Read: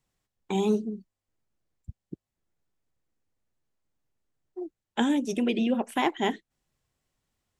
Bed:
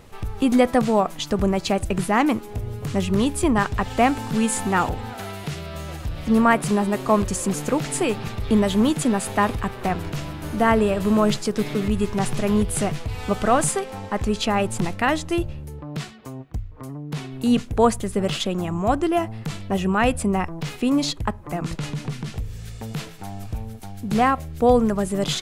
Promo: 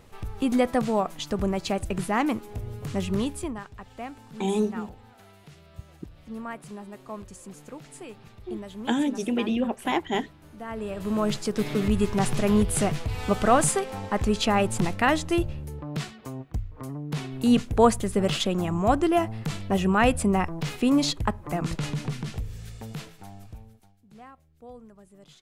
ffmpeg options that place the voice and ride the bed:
-filter_complex "[0:a]adelay=3900,volume=0dB[a];[1:a]volume=13dB,afade=t=out:st=3.15:d=0.46:silence=0.199526,afade=t=in:st=10.68:d=1.2:silence=0.11885,afade=t=out:st=21.95:d=2.02:silence=0.0398107[b];[a][b]amix=inputs=2:normalize=0"

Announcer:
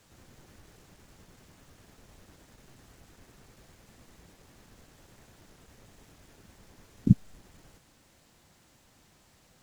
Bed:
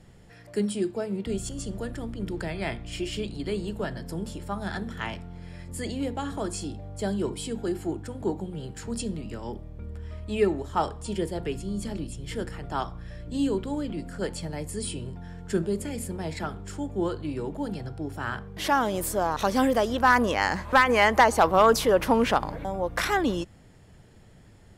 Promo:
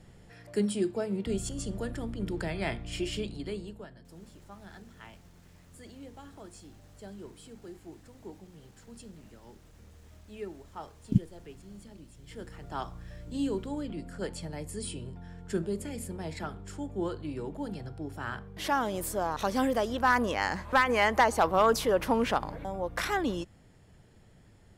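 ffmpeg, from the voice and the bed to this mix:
-filter_complex "[0:a]adelay=4050,volume=-4.5dB[a];[1:a]volume=10.5dB,afade=t=out:st=3.08:d=0.8:silence=0.16788,afade=t=in:st=12.13:d=0.81:silence=0.251189[b];[a][b]amix=inputs=2:normalize=0"

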